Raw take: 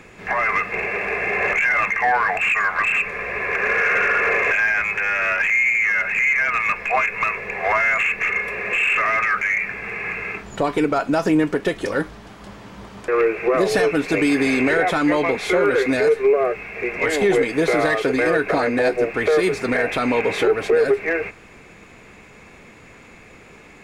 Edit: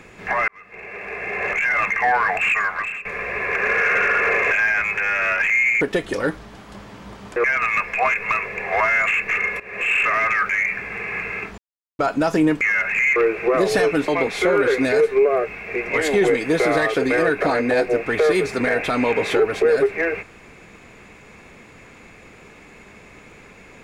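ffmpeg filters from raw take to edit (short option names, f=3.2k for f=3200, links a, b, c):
-filter_complex "[0:a]asplit=11[a][b][c][d][e][f][g][h][i][j][k];[a]atrim=end=0.48,asetpts=PTS-STARTPTS,afade=t=out:st=0.476:d=0.004:c=hsin[l];[b]atrim=start=0.48:end=3.05,asetpts=PTS-STARTPTS,afade=t=in:d=1.45,afade=t=out:st=2.06:d=0.51:silence=0.141254[m];[c]atrim=start=3.05:end=5.812,asetpts=PTS-STARTPTS,afade=t=in:d=0.004:c=hsin:silence=0.141254[n];[d]atrim=start=11.528:end=13.162[o];[e]atrim=start=6.358:end=8.52,asetpts=PTS-STARTPTS,afade=t=out:st=2.158:d=0.004:c=hsin:silence=0.133352[p];[f]atrim=start=8.52:end=10.5,asetpts=PTS-STARTPTS,afade=t=in:d=0.32:silence=0.133352,afade=t=out:st=1.976:d=0.004:c=hsin[q];[g]atrim=start=10.5:end=10.91,asetpts=PTS-STARTPTS,volume=0[r];[h]atrim=start=10.91:end=11.532,asetpts=PTS-STARTPTS,afade=t=in:d=0.004:c=hsin[s];[i]atrim=start=5.808:end=6.362[t];[j]atrim=start=13.158:end=14.082[u];[k]atrim=start=15.158[v];[l][m][n]concat=n=3:v=0:a=1[w];[w][o]acrossfade=d=0.004:c1=hsin:c2=hsin[x];[p][q][r][s]concat=n=4:v=0:a=1[y];[x][y]acrossfade=d=0.004:c1=hsin:c2=hsin[z];[z][t]acrossfade=d=0.004:c1=hsin:c2=hsin[aa];[aa][u]acrossfade=d=0.004:c1=hsin:c2=hsin[ab];[ab][v]acrossfade=d=0.004:c1=hsin:c2=hsin"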